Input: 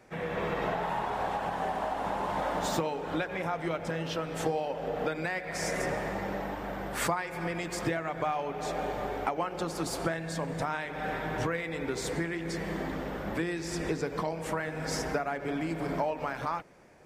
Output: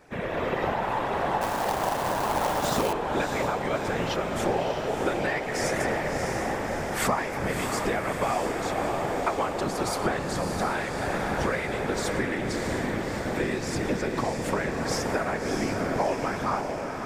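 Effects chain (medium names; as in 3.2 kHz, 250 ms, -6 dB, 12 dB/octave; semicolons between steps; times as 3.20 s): whisper effect; echo that smears into a reverb 643 ms, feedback 59%, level -5 dB; 1.41–2.93 s: companded quantiser 4-bit; trim +3.5 dB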